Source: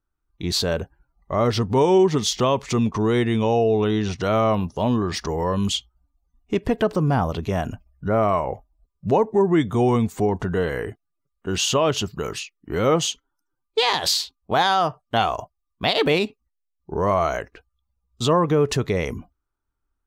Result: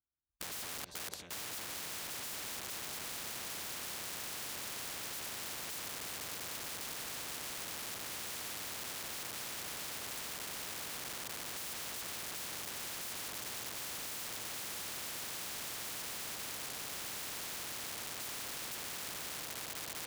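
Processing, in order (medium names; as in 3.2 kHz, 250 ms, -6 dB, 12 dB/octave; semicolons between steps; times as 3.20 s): bass shelf 140 Hz +10.5 dB; on a send: repeats whose band climbs or falls 317 ms, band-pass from 610 Hz, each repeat 0.7 oct, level -4.5 dB; on the sum: gate -36 dBFS, range -34 dB; in parallel at +1 dB: compression 4:1, threshold -27 dBFS, peak gain reduction 13.5 dB; on the sum: peak limiter -9.5 dBFS, peak gain reduction 7 dB; echo with a slow build-up 197 ms, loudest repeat 8, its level -17 dB; integer overflow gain 21.5 dB; high-pass 100 Hz 12 dB/octave; treble shelf 12 kHz -12 dB; spectrum-flattening compressor 4:1; trim -5 dB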